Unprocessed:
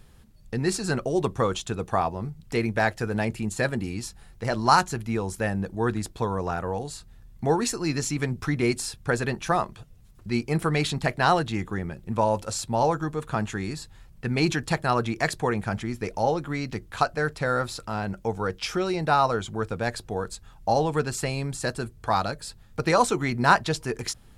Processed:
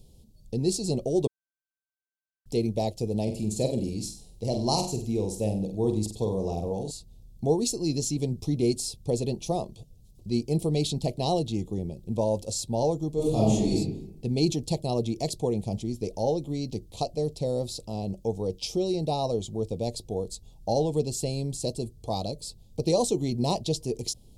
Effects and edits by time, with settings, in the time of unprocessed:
1.27–2.46 s: bleep 1.55 kHz -19.5 dBFS
3.22–6.91 s: flutter echo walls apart 8.1 m, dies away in 0.42 s
13.14–13.75 s: reverb throw, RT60 0.82 s, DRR -8.5 dB
whole clip: Chebyshev band-stop 560–4100 Hz, order 2

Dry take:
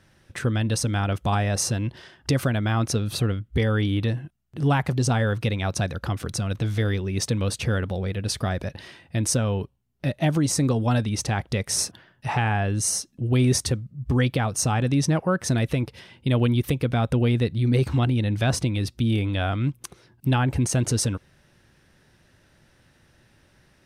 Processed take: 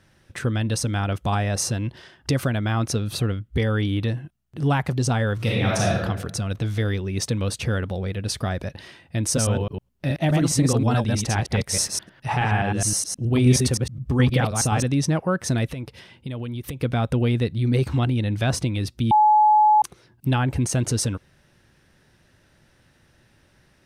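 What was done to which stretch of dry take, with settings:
5.35–6.02 s: reverb throw, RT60 0.97 s, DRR -4.5 dB
9.26–14.84 s: chunks repeated in reverse 105 ms, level -2 dB
15.67–16.81 s: compression, threshold -28 dBFS
19.11–19.82 s: bleep 851 Hz -12 dBFS

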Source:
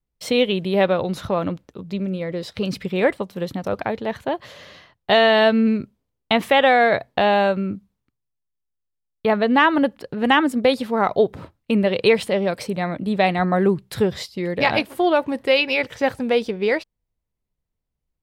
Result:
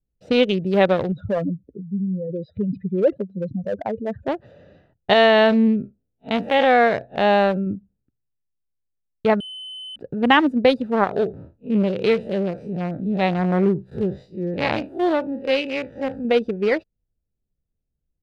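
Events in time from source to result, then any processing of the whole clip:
1.12–4.28 s: spectral contrast enhancement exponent 2.6
5.13–7.67 s: spectral blur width 86 ms
9.40–9.96 s: bleep 3.04 kHz -21 dBFS
11.04–16.25 s: spectral blur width 89 ms
whole clip: local Wiener filter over 41 samples; treble shelf 10 kHz -11 dB; trim +2 dB

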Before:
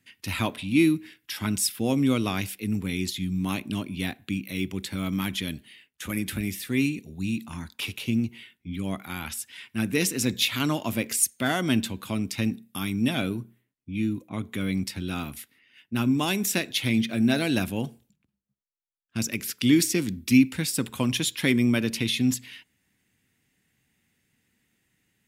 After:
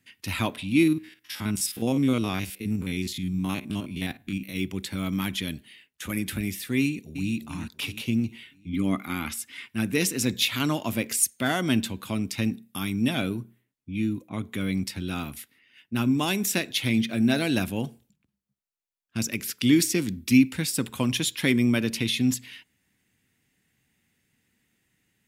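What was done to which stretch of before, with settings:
0.83–4.56 s: spectrogram pixelated in time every 50 ms
6.81–7.33 s: echo throw 340 ms, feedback 45%, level -10 dB
8.73–9.66 s: small resonant body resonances 270/1200/2100 Hz, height 10 dB, ringing for 25 ms

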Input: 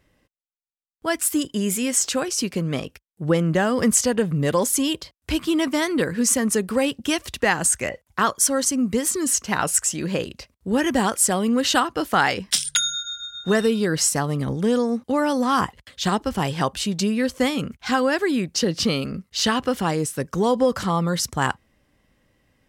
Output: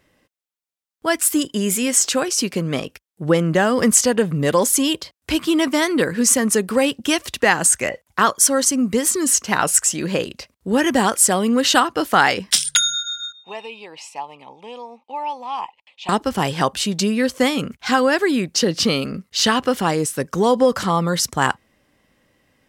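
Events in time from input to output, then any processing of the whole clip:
13.32–16.09 s: two resonant band-passes 1.5 kHz, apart 1.5 oct
whole clip: bass shelf 110 Hz -11 dB; trim +4.5 dB

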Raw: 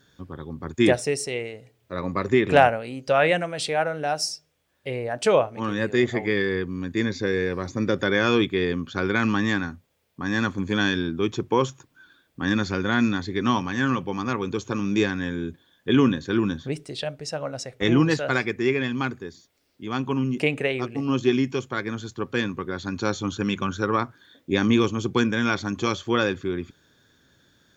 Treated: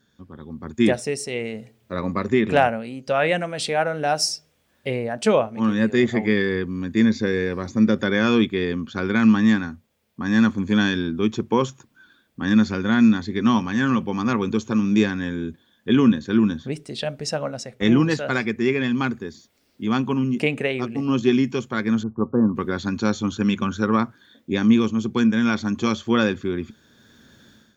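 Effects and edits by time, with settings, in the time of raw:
22.03–22.56 s: steep low-pass 1.2 kHz 48 dB/octave
whole clip: peaking EQ 220 Hz +12.5 dB 0.22 oct; level rider gain up to 14.5 dB; trim -6 dB

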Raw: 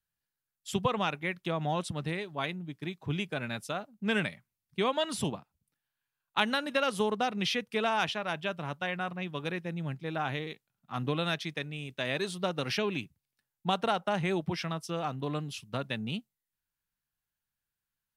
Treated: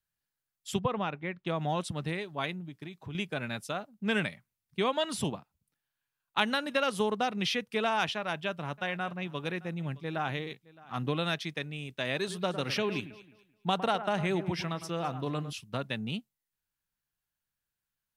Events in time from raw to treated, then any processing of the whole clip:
0.79–1.47 s: tape spacing loss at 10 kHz 24 dB
2.60–3.15 s: compression 4:1, threshold -38 dBFS
8.16–10.97 s: delay 616 ms -21.5 dB
12.17–15.53 s: echo whose repeats swap between lows and highs 107 ms, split 2.1 kHz, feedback 51%, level -11.5 dB

